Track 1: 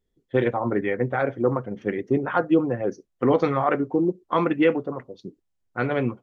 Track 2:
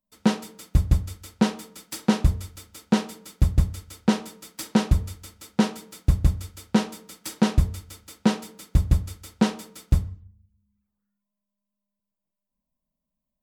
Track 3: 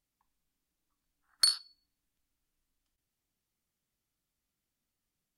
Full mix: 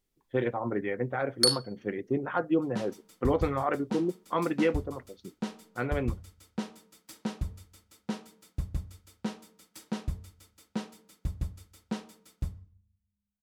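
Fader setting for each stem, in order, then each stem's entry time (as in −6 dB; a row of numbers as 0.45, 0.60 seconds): −7.0, −14.0, +2.0 decibels; 0.00, 2.50, 0.00 seconds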